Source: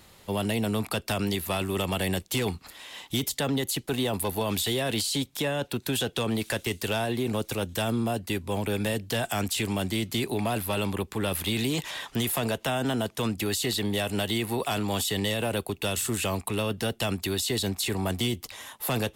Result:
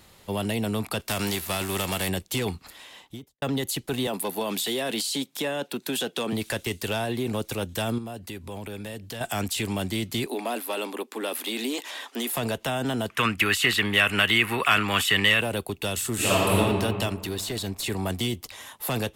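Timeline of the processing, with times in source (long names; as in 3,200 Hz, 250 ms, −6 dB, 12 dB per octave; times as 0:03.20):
0:00.99–0:02.08: spectral envelope flattened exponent 0.6
0:02.73–0:03.42: fade out and dull
0:04.07–0:06.33: high-pass filter 180 Hz 24 dB per octave
0:07.98–0:09.21: downward compressor 3 to 1, threshold −35 dBFS
0:10.26–0:12.36: elliptic high-pass filter 240 Hz
0:13.10–0:15.41: flat-topped bell 1,800 Hz +15 dB
0:16.14–0:16.55: thrown reverb, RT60 2.2 s, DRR −9.5 dB
0:17.09–0:17.84: tube saturation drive 21 dB, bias 0.6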